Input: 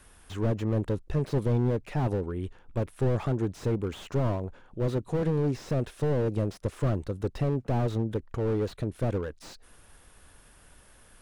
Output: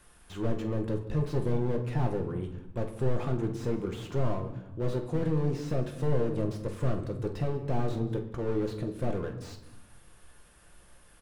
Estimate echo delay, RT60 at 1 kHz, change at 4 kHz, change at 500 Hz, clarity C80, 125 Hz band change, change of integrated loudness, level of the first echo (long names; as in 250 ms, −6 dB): 47 ms, 0.85 s, −2.5 dB, −2.0 dB, 12.0 dB, −3.0 dB, −2.5 dB, −11.0 dB